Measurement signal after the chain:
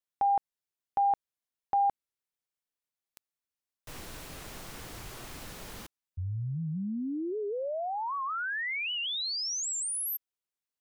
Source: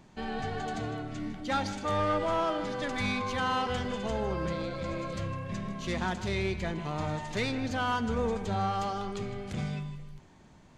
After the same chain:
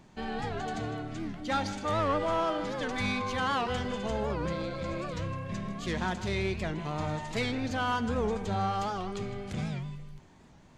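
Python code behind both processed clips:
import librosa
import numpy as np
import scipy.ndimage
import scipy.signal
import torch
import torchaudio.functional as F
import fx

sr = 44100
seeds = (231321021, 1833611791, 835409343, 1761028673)

y = fx.record_warp(x, sr, rpm=78.0, depth_cents=160.0)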